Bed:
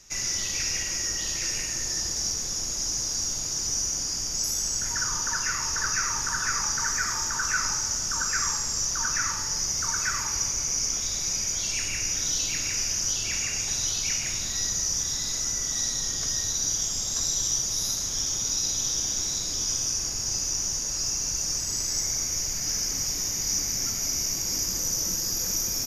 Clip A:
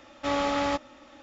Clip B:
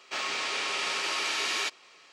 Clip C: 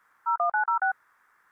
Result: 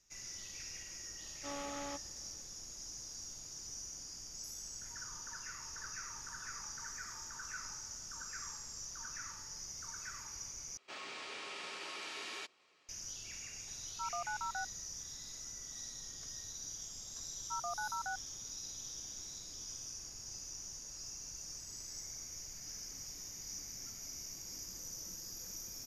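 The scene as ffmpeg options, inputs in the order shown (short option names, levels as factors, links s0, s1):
-filter_complex "[3:a]asplit=2[s0][s1];[0:a]volume=0.112[s2];[2:a]lowshelf=f=470:g=7[s3];[s2]asplit=2[s4][s5];[s4]atrim=end=10.774[s6];[s3]atrim=end=2.12,asetpts=PTS-STARTPTS,volume=0.168[s7];[s5]atrim=start=12.886[s8];[1:a]atrim=end=1.22,asetpts=PTS-STARTPTS,volume=0.141,afade=t=in:d=0.004:c=hsin,afade=t=out:st=1.216:d=0.004:c=hsin,adelay=1200[s9];[s0]atrim=end=1.51,asetpts=PTS-STARTPTS,volume=0.178,afade=t=in:d=0.004:c=hsin,afade=t=out:st=1.506:d=0.004:c=hsin,adelay=13730[s10];[s1]atrim=end=1.51,asetpts=PTS-STARTPTS,volume=0.178,afade=t=in:d=0.004:c=hsin,afade=t=out:st=1.506:d=0.004:c=hsin,adelay=17240[s11];[s6][s7]acrossfade=d=0.004:c1=hsin:c2=hsin[s12];[s12][s8]acrossfade=d=0.004:c1=hsin:c2=hsin[s13];[s13][s9][s10][s11]amix=inputs=4:normalize=0"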